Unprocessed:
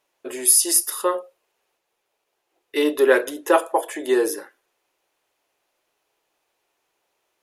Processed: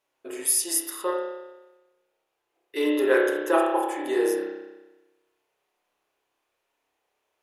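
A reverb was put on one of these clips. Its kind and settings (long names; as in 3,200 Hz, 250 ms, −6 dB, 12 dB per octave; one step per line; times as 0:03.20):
spring reverb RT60 1.1 s, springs 30 ms, chirp 50 ms, DRR −2 dB
level −7.5 dB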